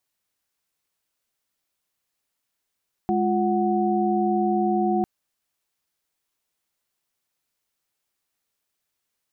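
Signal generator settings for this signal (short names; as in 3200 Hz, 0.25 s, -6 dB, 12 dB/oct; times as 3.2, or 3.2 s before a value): chord G#3/F4/F#5 sine, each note -23.5 dBFS 1.95 s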